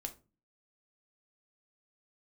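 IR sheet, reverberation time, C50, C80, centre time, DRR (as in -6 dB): 0.35 s, 15.0 dB, 22.0 dB, 7 ms, 5.0 dB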